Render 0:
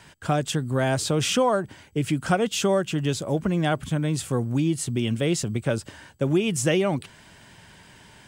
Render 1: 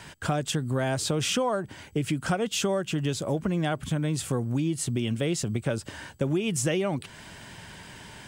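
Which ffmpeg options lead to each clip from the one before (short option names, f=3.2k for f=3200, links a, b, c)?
-af "acompressor=threshold=-33dB:ratio=2.5,volume=5dB"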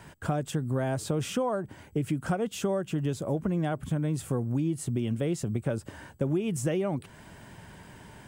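-af "equalizer=f=4.2k:t=o:w=2.6:g=-10.5,volume=-1dB"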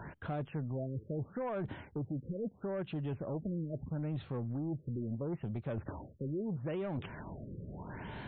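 -af "areverse,acompressor=threshold=-38dB:ratio=5,areverse,asoftclip=type=tanh:threshold=-36dB,afftfilt=real='re*lt(b*sr/1024,550*pow(4400/550,0.5+0.5*sin(2*PI*0.76*pts/sr)))':imag='im*lt(b*sr/1024,550*pow(4400/550,0.5+0.5*sin(2*PI*0.76*pts/sr)))':win_size=1024:overlap=0.75,volume=5dB"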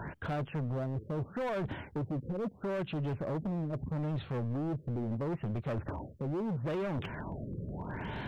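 -af "asoftclip=type=hard:threshold=-37dB,volume=5.5dB"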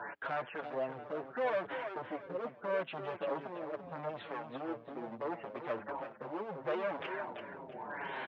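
-filter_complex "[0:a]highpass=570,lowpass=2.8k,aecho=1:1:336|672|1008|1344:0.422|0.131|0.0405|0.0126,asplit=2[a][b];[b]adelay=6.4,afreqshift=-1.9[c];[a][c]amix=inputs=2:normalize=1,volume=6.5dB"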